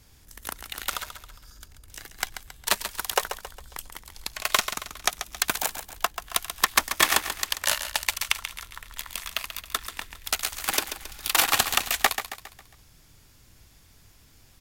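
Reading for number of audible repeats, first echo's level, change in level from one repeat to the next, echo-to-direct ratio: 4, -10.0 dB, -7.0 dB, -9.0 dB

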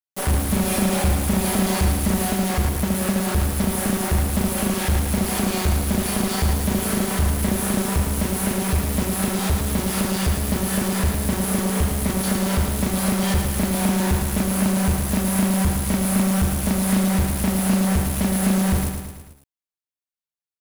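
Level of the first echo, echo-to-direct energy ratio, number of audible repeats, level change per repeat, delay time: -6.0 dB, -4.5 dB, 5, -5.0 dB, 110 ms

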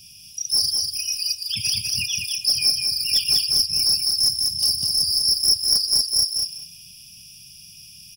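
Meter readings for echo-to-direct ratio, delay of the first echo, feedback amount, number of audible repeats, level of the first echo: -4.0 dB, 200 ms, 18%, 3, -4.0 dB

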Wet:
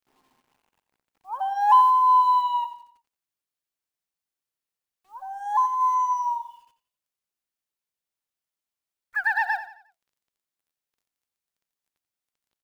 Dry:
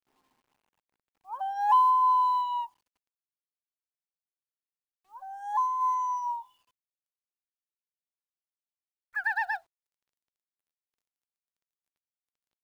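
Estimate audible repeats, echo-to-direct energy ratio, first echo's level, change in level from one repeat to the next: 3, -12.0 dB, -12.5 dB, -8.5 dB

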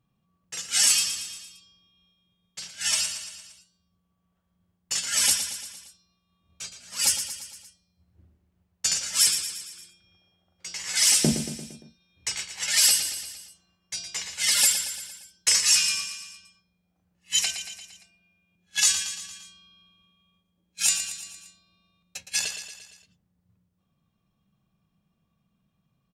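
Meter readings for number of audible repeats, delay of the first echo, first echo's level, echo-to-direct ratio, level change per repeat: 5, 115 ms, -9.5 dB, -8.0 dB, -5.0 dB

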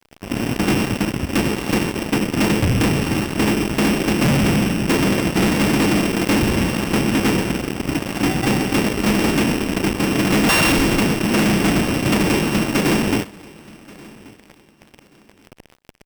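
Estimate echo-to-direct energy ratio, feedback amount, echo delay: -22.5 dB, 27%, 1131 ms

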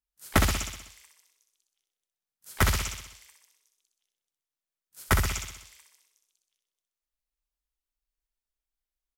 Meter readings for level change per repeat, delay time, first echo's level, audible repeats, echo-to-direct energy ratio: -4.5 dB, 63 ms, -5.5 dB, 7, -3.5 dB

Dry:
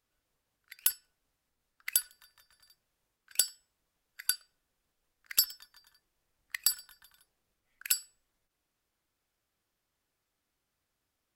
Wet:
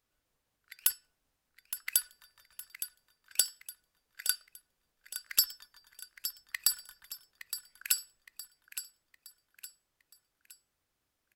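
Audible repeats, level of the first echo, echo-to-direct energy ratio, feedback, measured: 4, -11.0 dB, -10.0 dB, 42%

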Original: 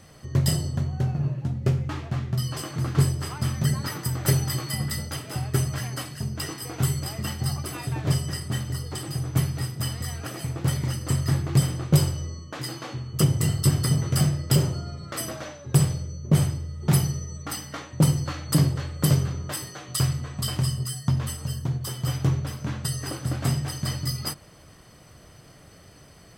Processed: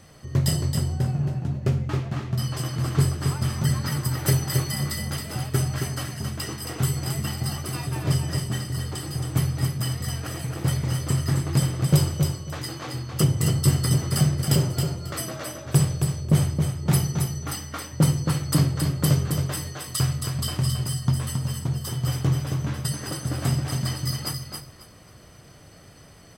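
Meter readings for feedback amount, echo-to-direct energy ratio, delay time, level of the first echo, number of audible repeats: 21%, -5.5 dB, 271 ms, -5.5 dB, 3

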